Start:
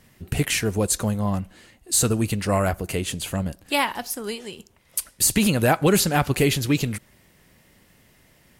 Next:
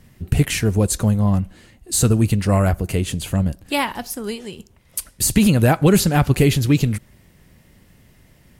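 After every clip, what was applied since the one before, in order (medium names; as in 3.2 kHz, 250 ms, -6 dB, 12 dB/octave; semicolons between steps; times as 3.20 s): bass shelf 240 Hz +10.5 dB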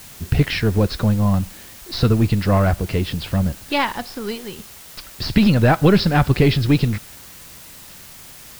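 partial rectifier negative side -3 dB; rippled Chebyshev low-pass 5.4 kHz, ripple 3 dB; in parallel at -6 dB: word length cut 6-bit, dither triangular; on the sum: trim +1 dB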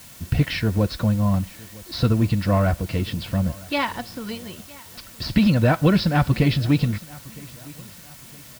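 comb of notches 410 Hz; feedback delay 962 ms, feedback 40%, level -22.5 dB; trim -2.5 dB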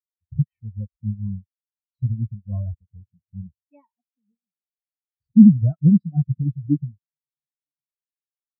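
spectral contrast expander 4:1; trim +4 dB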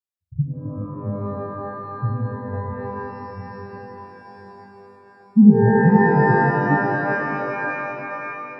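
pitch-shifted reverb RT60 3.7 s, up +12 st, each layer -2 dB, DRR 2 dB; trim -2.5 dB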